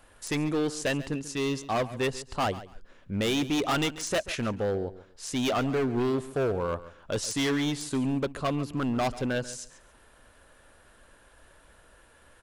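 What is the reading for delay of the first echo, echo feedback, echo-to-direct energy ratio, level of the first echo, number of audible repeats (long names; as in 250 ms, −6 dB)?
139 ms, 21%, −16.0 dB, −16.0 dB, 2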